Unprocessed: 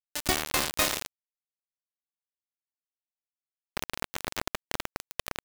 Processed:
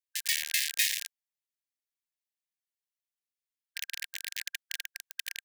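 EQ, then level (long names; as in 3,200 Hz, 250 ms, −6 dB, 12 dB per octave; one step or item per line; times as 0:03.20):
linear-phase brick-wall high-pass 1,600 Hz
0.0 dB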